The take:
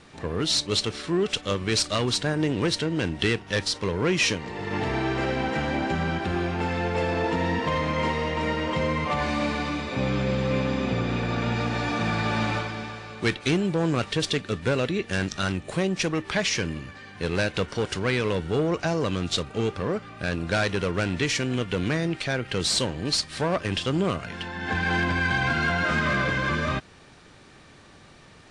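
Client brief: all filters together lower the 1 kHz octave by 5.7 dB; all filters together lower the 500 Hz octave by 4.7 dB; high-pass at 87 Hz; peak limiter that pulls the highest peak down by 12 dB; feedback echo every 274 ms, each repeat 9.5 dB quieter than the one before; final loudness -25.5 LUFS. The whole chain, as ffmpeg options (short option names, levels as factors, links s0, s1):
-af "highpass=87,equalizer=f=500:t=o:g=-4.5,equalizer=f=1000:t=o:g=-6,alimiter=limit=0.0708:level=0:latency=1,aecho=1:1:274|548|822|1096:0.335|0.111|0.0365|0.012,volume=2.11"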